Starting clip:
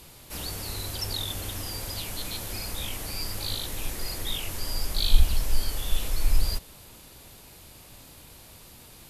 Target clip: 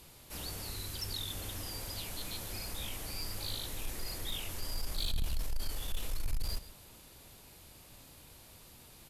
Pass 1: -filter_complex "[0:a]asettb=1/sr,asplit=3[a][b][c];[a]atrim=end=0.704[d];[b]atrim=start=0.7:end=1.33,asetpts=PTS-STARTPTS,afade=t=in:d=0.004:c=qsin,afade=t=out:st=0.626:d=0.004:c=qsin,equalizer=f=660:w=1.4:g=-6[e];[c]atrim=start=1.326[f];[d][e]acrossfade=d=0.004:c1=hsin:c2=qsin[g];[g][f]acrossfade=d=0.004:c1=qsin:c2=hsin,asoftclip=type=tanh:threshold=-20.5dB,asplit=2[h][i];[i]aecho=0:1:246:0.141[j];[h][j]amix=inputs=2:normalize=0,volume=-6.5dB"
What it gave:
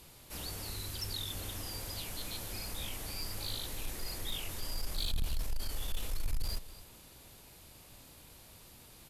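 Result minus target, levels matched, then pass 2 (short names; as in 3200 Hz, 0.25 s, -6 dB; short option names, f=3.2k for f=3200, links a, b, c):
echo 0.109 s late
-filter_complex "[0:a]asettb=1/sr,asplit=3[a][b][c];[a]atrim=end=0.704[d];[b]atrim=start=0.7:end=1.33,asetpts=PTS-STARTPTS,afade=t=in:d=0.004:c=qsin,afade=t=out:st=0.626:d=0.004:c=qsin,equalizer=f=660:w=1.4:g=-6[e];[c]atrim=start=1.326[f];[d][e]acrossfade=d=0.004:c1=hsin:c2=qsin[g];[g][f]acrossfade=d=0.004:c1=qsin:c2=hsin,asoftclip=type=tanh:threshold=-20.5dB,asplit=2[h][i];[i]aecho=0:1:137:0.141[j];[h][j]amix=inputs=2:normalize=0,volume=-6.5dB"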